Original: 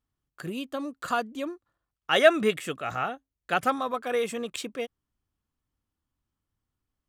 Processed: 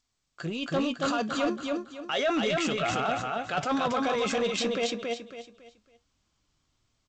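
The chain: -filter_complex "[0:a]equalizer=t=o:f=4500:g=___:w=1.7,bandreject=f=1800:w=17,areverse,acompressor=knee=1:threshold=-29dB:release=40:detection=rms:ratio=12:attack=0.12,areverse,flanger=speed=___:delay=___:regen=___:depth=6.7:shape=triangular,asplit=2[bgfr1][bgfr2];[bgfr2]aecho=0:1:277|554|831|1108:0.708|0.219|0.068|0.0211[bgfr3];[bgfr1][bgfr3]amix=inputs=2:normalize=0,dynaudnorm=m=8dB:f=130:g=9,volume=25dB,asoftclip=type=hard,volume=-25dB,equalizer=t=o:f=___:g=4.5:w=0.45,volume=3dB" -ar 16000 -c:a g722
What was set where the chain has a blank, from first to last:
6, 0.34, 3.9, 70, 650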